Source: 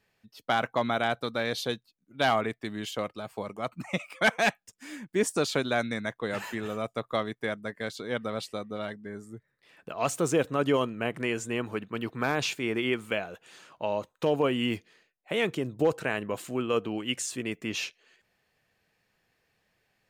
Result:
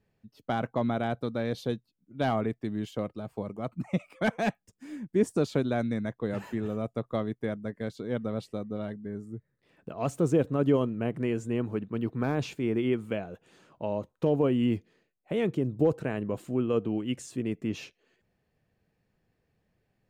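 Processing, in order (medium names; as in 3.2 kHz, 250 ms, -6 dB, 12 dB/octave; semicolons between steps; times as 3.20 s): tilt shelf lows +9 dB, about 630 Hz; trim -2.5 dB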